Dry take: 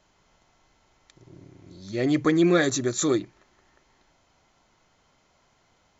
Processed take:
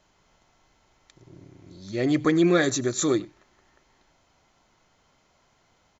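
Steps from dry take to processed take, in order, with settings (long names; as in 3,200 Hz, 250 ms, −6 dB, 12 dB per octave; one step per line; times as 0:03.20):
single-tap delay 95 ms −23.5 dB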